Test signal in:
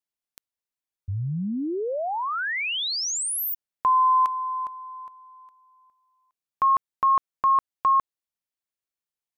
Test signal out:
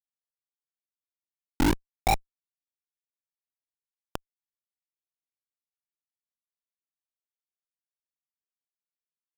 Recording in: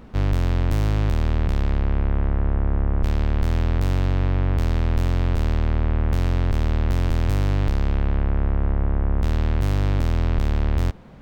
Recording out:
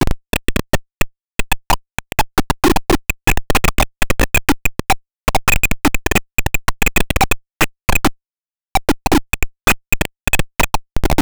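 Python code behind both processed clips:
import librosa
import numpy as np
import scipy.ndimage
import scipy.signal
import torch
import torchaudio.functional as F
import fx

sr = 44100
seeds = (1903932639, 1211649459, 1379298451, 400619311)

y = fx.sine_speech(x, sr)
y = fx.small_body(y, sr, hz=(290.0, 780.0, 2500.0), ring_ms=55, db=17)
y = fx.schmitt(y, sr, flips_db=-9.0)
y = F.gain(torch.from_numpy(y), 2.5).numpy()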